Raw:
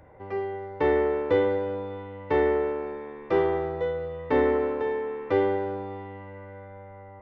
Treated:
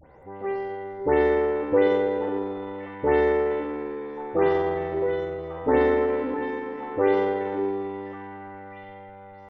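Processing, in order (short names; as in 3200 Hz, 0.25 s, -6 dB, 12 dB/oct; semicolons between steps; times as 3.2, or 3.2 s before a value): spectral delay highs late, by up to 0.187 s; delay with a stepping band-pass 0.426 s, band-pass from 360 Hz, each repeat 1.4 oct, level -6.5 dB; tempo 0.76×; gain +2 dB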